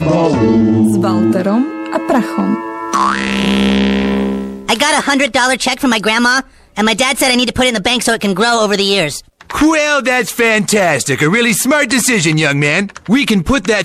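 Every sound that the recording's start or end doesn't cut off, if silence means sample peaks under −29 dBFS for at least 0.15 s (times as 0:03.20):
0:06.77–0:09.20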